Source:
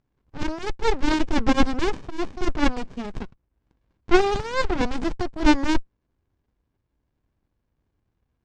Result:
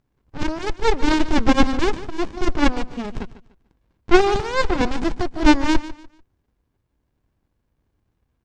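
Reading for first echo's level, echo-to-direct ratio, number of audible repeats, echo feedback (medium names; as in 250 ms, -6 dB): -15.5 dB, -15.0 dB, 2, 28%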